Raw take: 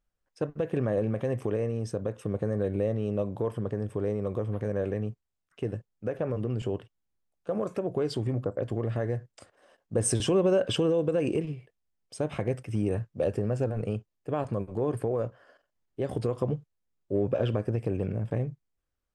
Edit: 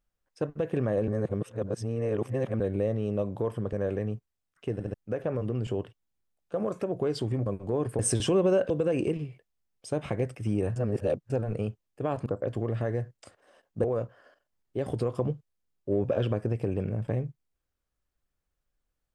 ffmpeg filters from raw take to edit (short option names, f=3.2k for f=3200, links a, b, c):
-filter_complex "[0:a]asplit=14[a][b][c][d][e][f][g][h][i][j][k][l][m][n];[a]atrim=end=1.082[o];[b]atrim=start=1.078:end=2.602,asetpts=PTS-STARTPTS,areverse[p];[c]atrim=start=2.598:end=3.732[q];[d]atrim=start=4.678:end=5.752[r];[e]atrim=start=5.678:end=5.752[s];[f]atrim=start=5.678:end=5.752[t];[g]atrim=start=5.888:end=8.412[u];[h]atrim=start=14.538:end=15.072[v];[i]atrim=start=9.988:end=10.702[w];[j]atrim=start=10.978:end=13.042[x];[k]atrim=start=13.038:end=13.582,asetpts=PTS-STARTPTS,areverse[y];[l]atrim=start=13.578:end=14.542[z];[m]atrim=start=8.408:end=9.992[aa];[n]atrim=start=15.068[ab];[o][p]acrossfade=d=0.004:c1=hsin:c2=hsin[ac];[ac][q]acrossfade=d=0.004:c1=hsin:c2=hsin[ad];[ad][r]acrossfade=d=0.004:c1=hsin:c2=hsin[ae];[ae][s]acrossfade=d=0.004:c1=hsin:c2=hsin[af];[af][t]acrossfade=d=0.004:c1=hsin:c2=hsin[ag];[ag][u]acrossfade=d=0.004:c1=hsin:c2=hsin[ah];[ah][v]acrossfade=d=0.004:c1=hsin:c2=hsin[ai];[ai][w]acrossfade=d=0.004:c1=hsin:c2=hsin[aj];[aj][x]acrossfade=d=0.004:c1=hsin:c2=hsin[ak];[ak][y]acrossfade=d=0.004:c1=hsin:c2=hsin[al];[al][z]acrossfade=d=0.004:c1=hsin:c2=hsin[am];[am][aa]acrossfade=d=0.004:c1=hsin:c2=hsin[an];[an][ab]acrossfade=d=0.004:c1=hsin:c2=hsin"